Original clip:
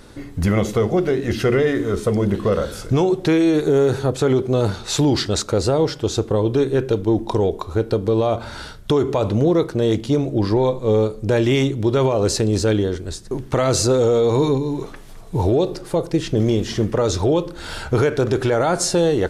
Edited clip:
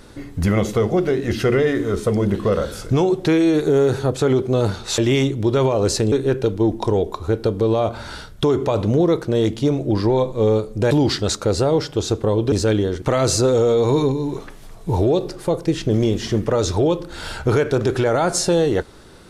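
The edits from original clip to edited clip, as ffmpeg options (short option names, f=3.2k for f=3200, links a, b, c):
-filter_complex "[0:a]asplit=6[a][b][c][d][e][f];[a]atrim=end=4.982[g];[b]atrim=start=11.378:end=12.522[h];[c]atrim=start=6.588:end=11.382[i];[d]atrim=start=4.978:end=6.592[j];[e]atrim=start=12.518:end=13.022[k];[f]atrim=start=13.478[l];[g][h]acrossfade=d=0.004:c1=hsin:c2=hsin[m];[m][i]acrossfade=d=0.004:c1=hsin:c2=hsin[n];[n][j]acrossfade=d=0.004:c1=hsin:c2=hsin[o];[o][k]acrossfade=d=0.004:c1=hsin:c2=hsin[p];[p][l]acrossfade=d=0.004:c1=hsin:c2=hsin"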